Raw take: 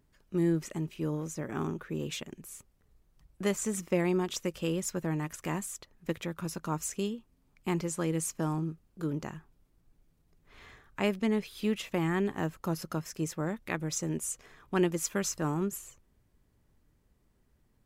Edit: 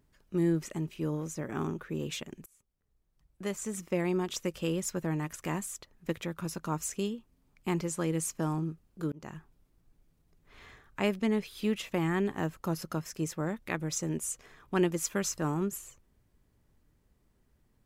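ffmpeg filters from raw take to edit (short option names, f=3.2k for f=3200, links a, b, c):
-filter_complex "[0:a]asplit=3[a][b][c];[a]atrim=end=2.46,asetpts=PTS-STARTPTS,afade=t=out:st=2.456:d=0.004:c=hsin:silence=0.0749894[d];[b]atrim=start=2.46:end=9.12,asetpts=PTS-STARTPTS,afade=t=in:d=2.02:silence=0.0749894,afade=t=out:st=6.656:d=0.004:c=hsin[e];[c]atrim=start=9.12,asetpts=PTS-STARTPTS,afade=t=in:d=0.25[f];[d][e][f]concat=n=3:v=0:a=1"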